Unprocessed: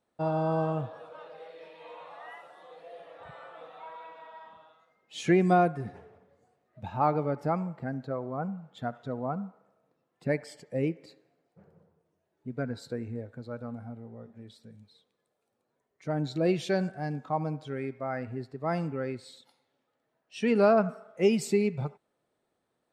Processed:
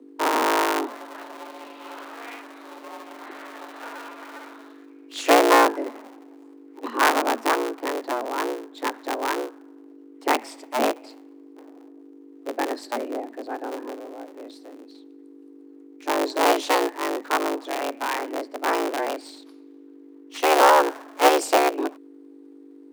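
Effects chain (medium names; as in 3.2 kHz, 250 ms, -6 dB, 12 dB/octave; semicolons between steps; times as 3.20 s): cycle switcher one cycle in 3, inverted; hum 50 Hz, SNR 21 dB; frequency shift +230 Hz; trim +6.5 dB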